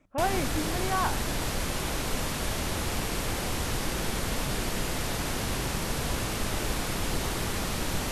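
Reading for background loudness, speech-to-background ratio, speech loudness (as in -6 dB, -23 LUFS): -30.5 LUFS, -1.0 dB, -31.5 LUFS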